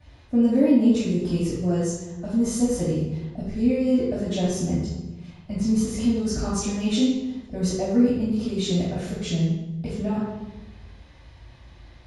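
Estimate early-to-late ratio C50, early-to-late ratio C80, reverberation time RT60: -1.0 dB, 2.0 dB, 1.1 s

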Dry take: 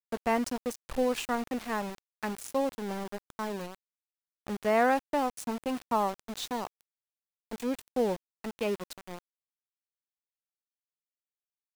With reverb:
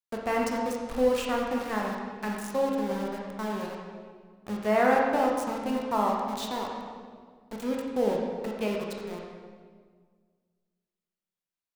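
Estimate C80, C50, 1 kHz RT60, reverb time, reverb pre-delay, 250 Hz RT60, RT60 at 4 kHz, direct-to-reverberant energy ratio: 3.0 dB, 1.0 dB, 1.6 s, 1.7 s, 17 ms, 2.1 s, 1.3 s, -1.5 dB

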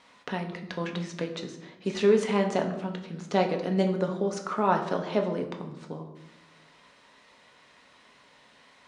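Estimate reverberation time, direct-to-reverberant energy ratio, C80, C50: 0.85 s, 3.0 dB, 11.5 dB, 9.0 dB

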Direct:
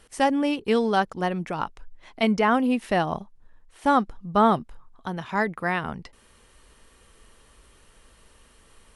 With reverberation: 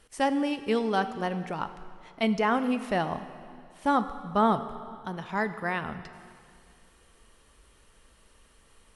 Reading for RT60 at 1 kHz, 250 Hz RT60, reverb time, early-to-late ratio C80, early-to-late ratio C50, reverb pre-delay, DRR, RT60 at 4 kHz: 2.3 s, 2.2 s, 2.3 s, 12.5 dB, 11.5 dB, 6 ms, 10.5 dB, 2.2 s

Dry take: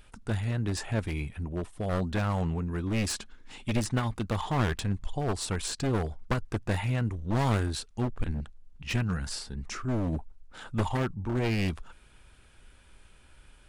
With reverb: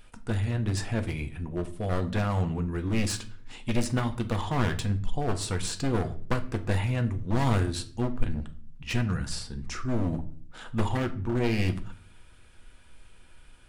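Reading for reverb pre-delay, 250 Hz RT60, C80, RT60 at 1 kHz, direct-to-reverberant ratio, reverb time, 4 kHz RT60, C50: 4 ms, 0.70 s, 19.0 dB, 0.40 s, 7.0 dB, 0.45 s, 0.35 s, 15.0 dB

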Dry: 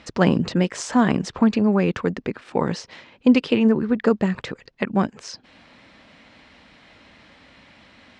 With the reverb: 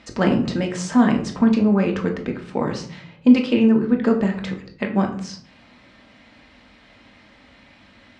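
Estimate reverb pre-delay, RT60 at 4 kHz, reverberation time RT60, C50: 3 ms, 0.35 s, 0.55 s, 9.5 dB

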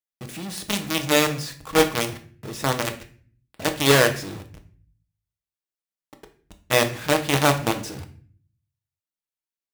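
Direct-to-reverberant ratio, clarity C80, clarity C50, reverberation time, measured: 5.0 dB, 16.5 dB, 12.5 dB, 0.45 s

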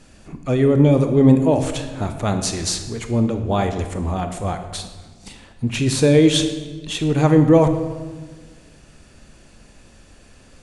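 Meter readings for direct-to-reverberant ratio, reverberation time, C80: 7.0 dB, 1.4 s, 10.5 dB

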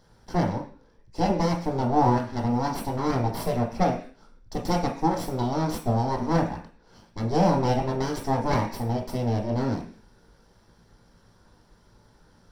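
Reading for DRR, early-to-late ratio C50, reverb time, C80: 1.5 dB, 9.5 dB, 0.45 s, 14.5 dB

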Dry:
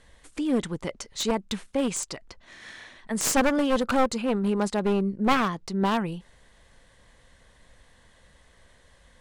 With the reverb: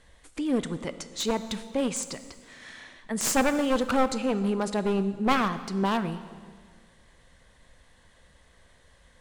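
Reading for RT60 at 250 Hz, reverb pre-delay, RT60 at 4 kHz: 2.0 s, 6 ms, 1.6 s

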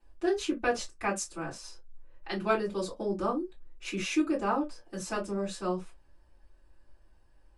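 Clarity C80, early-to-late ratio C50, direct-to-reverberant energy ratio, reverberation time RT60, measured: 29.0 dB, 17.0 dB, -9.5 dB, no single decay rate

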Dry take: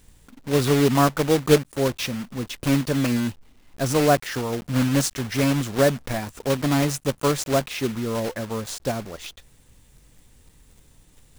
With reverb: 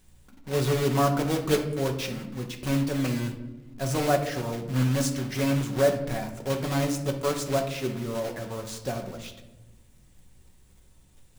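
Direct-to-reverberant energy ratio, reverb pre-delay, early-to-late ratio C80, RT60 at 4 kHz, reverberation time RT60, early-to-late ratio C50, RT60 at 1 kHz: 3.0 dB, 5 ms, 11.5 dB, 0.55 s, 1.1 s, 8.5 dB, 0.90 s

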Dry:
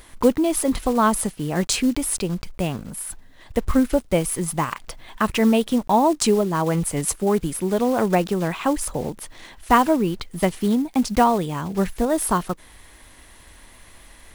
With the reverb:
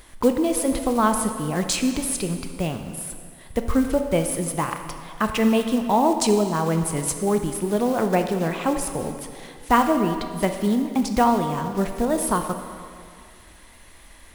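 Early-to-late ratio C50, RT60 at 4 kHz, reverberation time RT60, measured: 7.0 dB, 1.8 s, 2.2 s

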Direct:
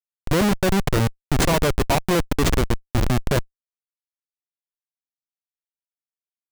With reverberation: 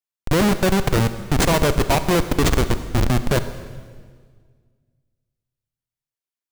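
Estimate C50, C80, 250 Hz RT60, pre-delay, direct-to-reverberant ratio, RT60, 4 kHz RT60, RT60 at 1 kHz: 11.5 dB, 12.5 dB, 2.1 s, 35 ms, 11.0 dB, 1.8 s, 1.6 s, 1.6 s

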